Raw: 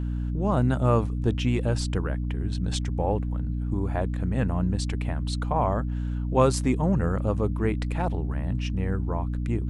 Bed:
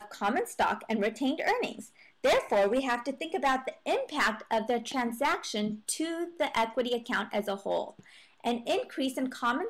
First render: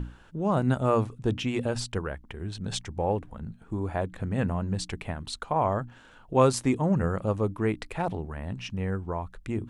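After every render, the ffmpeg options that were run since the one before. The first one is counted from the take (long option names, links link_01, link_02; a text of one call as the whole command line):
ffmpeg -i in.wav -af "bandreject=frequency=60:width_type=h:width=6,bandreject=frequency=120:width_type=h:width=6,bandreject=frequency=180:width_type=h:width=6,bandreject=frequency=240:width_type=h:width=6,bandreject=frequency=300:width_type=h:width=6" out.wav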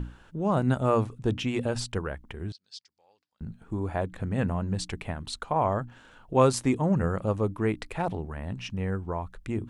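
ffmpeg -i in.wav -filter_complex "[0:a]asettb=1/sr,asplit=3[link_01][link_02][link_03];[link_01]atrim=end=2.524[link_04];[link_02]atrim=start=2.52:end=3.41,asetpts=PTS-STARTPTS,afade=type=in:duration=0.004:curve=qsin,afade=type=out:start_time=0.886:duration=0.004:curve=qsin,bandpass=frequency=4800:width_type=q:width=8.9[link_05];[link_03]atrim=start=3.406[link_06];[link_04][link_05]acrossfade=duration=0.004:curve1=hsin:curve2=qsin[link_07];[link_07][link_06]acrossfade=duration=0.004:curve1=qsin:curve2=hsin" out.wav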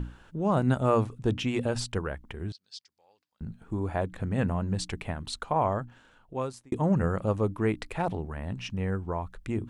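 ffmpeg -i in.wav -filter_complex "[0:a]asplit=2[link_01][link_02];[link_01]atrim=end=6.72,asetpts=PTS-STARTPTS,afade=type=out:start_time=5.54:duration=1.18[link_03];[link_02]atrim=start=6.72,asetpts=PTS-STARTPTS,afade=type=in:duration=0.004:curve=hsin[link_04];[link_03][link_04]concat=n=2:v=0:a=1" out.wav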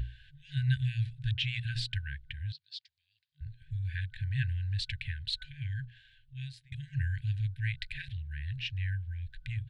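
ffmpeg -i in.wav -af "afftfilt=real='re*(1-between(b*sr/4096,150,1500))':imag='im*(1-between(b*sr/4096,150,1500))':win_size=4096:overlap=0.75,firequalizer=gain_entry='entry(150,0);entry(450,-13);entry(640,-4);entry(3900,6);entry(6000,-14)':delay=0.05:min_phase=1" out.wav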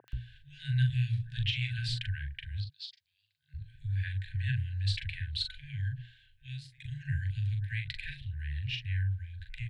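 ffmpeg -i in.wav -filter_complex "[0:a]asplit=2[link_01][link_02];[link_02]adelay=41,volume=-6dB[link_03];[link_01][link_03]amix=inputs=2:normalize=0,acrossover=split=360|1100[link_04][link_05][link_06];[link_06]adelay=80[link_07];[link_04]adelay=130[link_08];[link_08][link_05][link_07]amix=inputs=3:normalize=0" out.wav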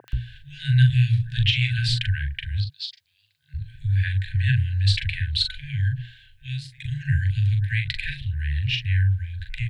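ffmpeg -i in.wav -af "volume=11dB" out.wav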